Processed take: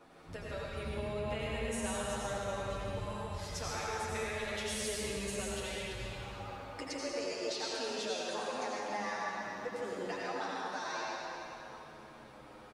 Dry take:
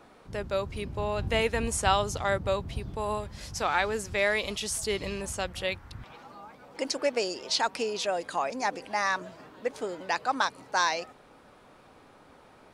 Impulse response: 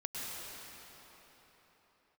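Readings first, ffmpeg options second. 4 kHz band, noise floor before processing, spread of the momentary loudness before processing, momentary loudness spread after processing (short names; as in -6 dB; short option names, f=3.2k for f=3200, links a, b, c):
-7.5 dB, -56 dBFS, 12 LU, 9 LU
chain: -filter_complex "[0:a]acompressor=threshold=-36dB:ratio=5[a];[1:a]atrim=start_sample=2205,asetrate=57330,aresample=44100[b];[a][b]afir=irnorm=-1:irlink=0,asplit=2[c][d];[d]adelay=8.5,afreqshift=-0.28[e];[c][e]amix=inputs=2:normalize=1,volume=4.5dB"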